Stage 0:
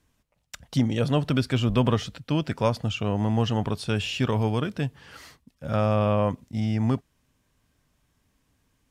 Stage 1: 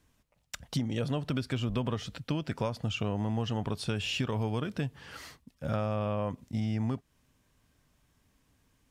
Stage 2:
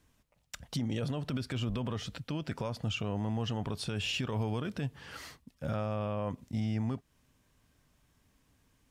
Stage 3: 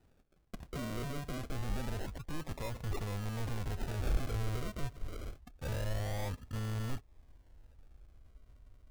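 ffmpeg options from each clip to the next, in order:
-af "acompressor=threshold=-28dB:ratio=6"
-af "alimiter=level_in=1.5dB:limit=-24dB:level=0:latency=1:release=26,volume=-1.5dB"
-af "acrusher=samples=40:mix=1:aa=0.000001:lfo=1:lforange=24:lforate=0.26,asoftclip=type=tanh:threshold=-35.5dB,asubboost=boost=10.5:cutoff=54,volume=1dB"

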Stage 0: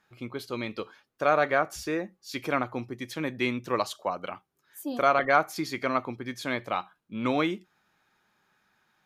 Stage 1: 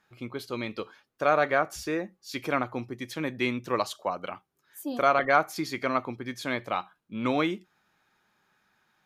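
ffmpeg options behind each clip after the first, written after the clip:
-af anull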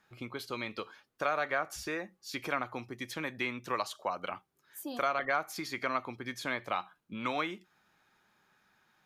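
-filter_complex "[0:a]acrossover=split=740|2100[a][b][c];[a]acompressor=threshold=-40dB:ratio=4[d];[b]acompressor=threshold=-31dB:ratio=4[e];[c]acompressor=threshold=-41dB:ratio=4[f];[d][e][f]amix=inputs=3:normalize=0"

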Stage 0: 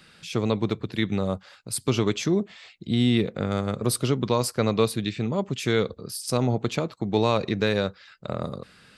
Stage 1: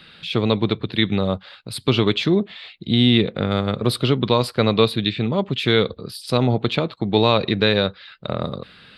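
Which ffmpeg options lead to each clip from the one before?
-af "highshelf=f=4.9k:t=q:w=3:g=-9,volume=5dB"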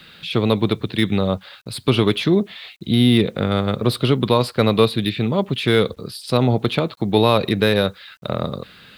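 -filter_complex "[0:a]acrossover=split=680|2300[a][b][c];[c]asoftclip=type=tanh:threshold=-23.5dB[d];[a][b][d]amix=inputs=3:normalize=0,acrusher=bits=9:mix=0:aa=0.000001,volume=1.5dB"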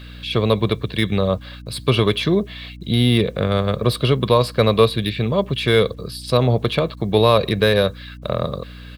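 -af "aecho=1:1:1.8:0.42,aeval=exprs='val(0)+0.0158*(sin(2*PI*60*n/s)+sin(2*PI*2*60*n/s)/2+sin(2*PI*3*60*n/s)/3+sin(2*PI*4*60*n/s)/4+sin(2*PI*5*60*n/s)/5)':c=same"

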